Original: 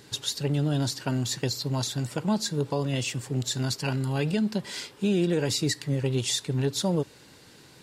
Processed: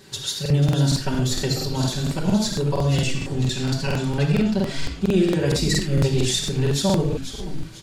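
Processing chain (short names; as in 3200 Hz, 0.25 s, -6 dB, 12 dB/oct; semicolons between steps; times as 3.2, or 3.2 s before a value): 3.07–5.11 high shelf 8000 Hz -9 dB; frequency-shifting echo 0.491 s, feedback 39%, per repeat -150 Hz, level -10.5 dB; reverb, pre-delay 5 ms, DRR -4 dB; crackling interface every 0.23 s, samples 2048, repeat, from 0.41; gain -1 dB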